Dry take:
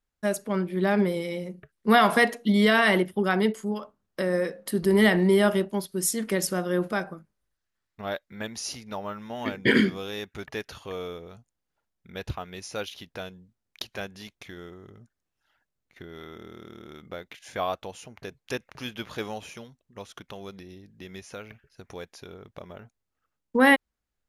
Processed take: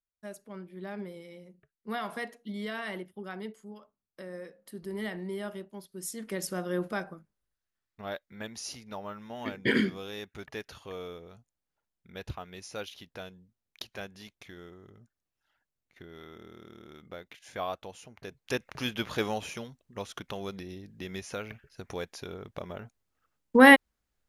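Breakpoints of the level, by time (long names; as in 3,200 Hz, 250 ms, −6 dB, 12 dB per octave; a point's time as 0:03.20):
0:05.69 −16.5 dB
0:06.64 −5.5 dB
0:18.18 −5.5 dB
0:18.70 +3 dB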